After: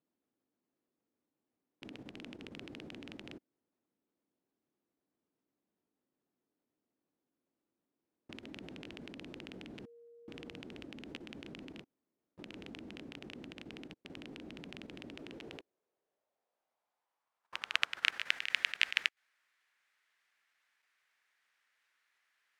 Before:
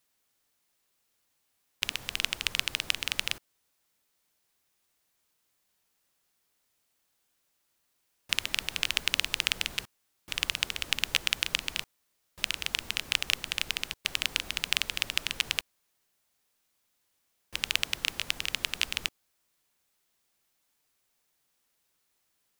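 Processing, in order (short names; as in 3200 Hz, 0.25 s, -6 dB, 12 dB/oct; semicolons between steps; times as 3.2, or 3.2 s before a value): dynamic EQ 1100 Hz, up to -5 dB, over -52 dBFS, Q 1.7; band-pass sweep 280 Hz -> 1800 Hz, 15.04–18.41; level quantiser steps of 10 dB; 9.83–10.59 whine 470 Hz -66 dBFS; gain +11 dB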